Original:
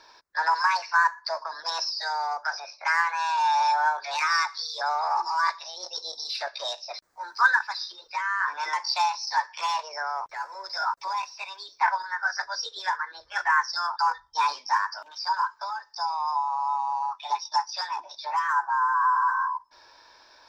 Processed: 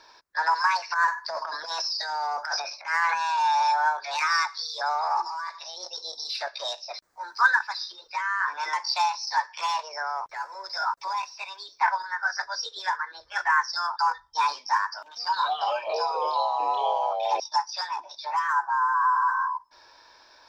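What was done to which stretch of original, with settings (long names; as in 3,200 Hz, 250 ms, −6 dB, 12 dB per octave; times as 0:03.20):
0:00.90–0:03.21: transient designer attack −11 dB, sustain +10 dB
0:05.25–0:06.18: downward compressor, threshold −30 dBFS
0:15.03–0:17.40: delay with pitch and tempo change per echo 132 ms, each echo −4 semitones, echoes 3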